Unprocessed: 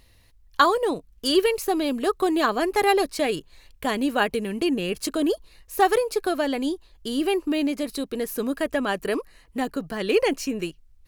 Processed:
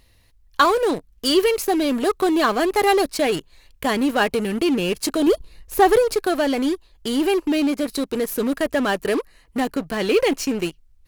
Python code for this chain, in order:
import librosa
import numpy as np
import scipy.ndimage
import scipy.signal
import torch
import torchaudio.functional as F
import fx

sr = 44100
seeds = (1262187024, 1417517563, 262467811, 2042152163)

p1 = fx.low_shelf(x, sr, hz=400.0, db=9.0, at=(5.27, 6.15))
p2 = fx.fuzz(p1, sr, gain_db=32.0, gate_db=-34.0)
y = p1 + F.gain(torch.from_numpy(p2), -12.0).numpy()